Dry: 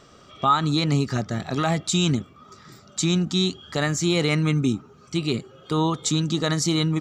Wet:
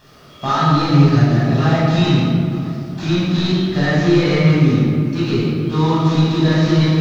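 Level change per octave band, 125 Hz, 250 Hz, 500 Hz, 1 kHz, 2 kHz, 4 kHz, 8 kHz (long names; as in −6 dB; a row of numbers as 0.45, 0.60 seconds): +10.5 dB, +8.5 dB, +8.0 dB, +5.5 dB, +6.5 dB, +1.5 dB, can't be measured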